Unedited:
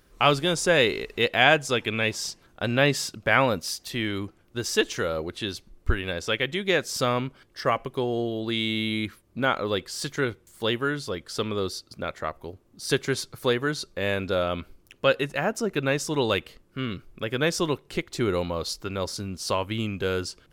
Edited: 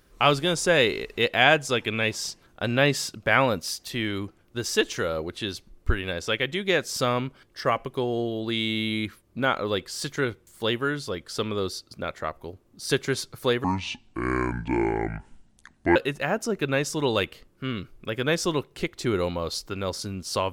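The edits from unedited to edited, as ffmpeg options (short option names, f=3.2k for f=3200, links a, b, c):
-filter_complex "[0:a]asplit=3[a][b][c];[a]atrim=end=13.644[d];[b]atrim=start=13.64:end=15.1,asetpts=PTS-STARTPTS,asetrate=27783,aresample=44100[e];[c]atrim=start=15.096[f];[d][e]acrossfade=d=0.004:c1=hsin:c2=hsin[g];[g][f]acrossfade=d=0.004:c1=hsin:c2=hsin"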